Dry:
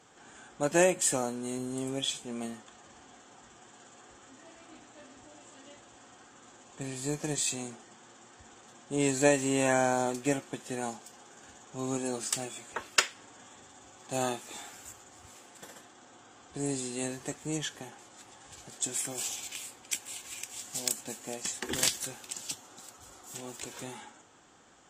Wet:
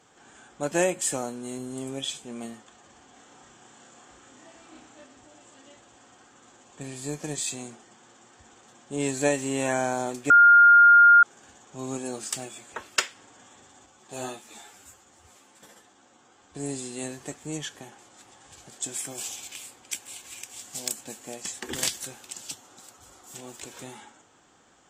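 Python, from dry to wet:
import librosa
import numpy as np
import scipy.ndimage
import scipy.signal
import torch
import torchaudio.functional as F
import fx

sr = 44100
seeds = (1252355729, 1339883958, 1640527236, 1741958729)

y = fx.doubler(x, sr, ms=32.0, db=-2, at=(3.13, 5.04))
y = fx.ensemble(y, sr, at=(13.86, 16.55))
y = fx.edit(y, sr, fx.bleep(start_s=10.3, length_s=0.93, hz=1410.0, db=-10.5), tone=tone)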